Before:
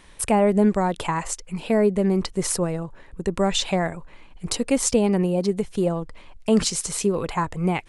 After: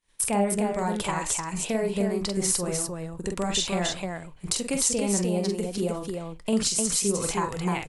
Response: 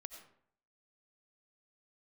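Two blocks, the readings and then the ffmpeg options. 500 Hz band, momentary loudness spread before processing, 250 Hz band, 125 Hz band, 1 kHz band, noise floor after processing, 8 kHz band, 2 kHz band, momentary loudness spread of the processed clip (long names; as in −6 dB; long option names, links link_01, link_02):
−5.5 dB, 11 LU, −5.5 dB, −5.0 dB, −4.0 dB, −43 dBFS, +2.5 dB, −2.5 dB, 9 LU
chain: -filter_complex "[0:a]agate=range=-33dB:threshold=-37dB:ratio=3:detection=peak,highshelf=frequency=3600:gain=11,acompressor=threshold=-22dB:ratio=2,flanger=delay=4.2:depth=6.4:regen=85:speed=0.3:shape=sinusoidal,asplit=2[link_01][link_02];[link_02]aecho=0:1:45|303:0.562|0.631[link_03];[link_01][link_03]amix=inputs=2:normalize=0"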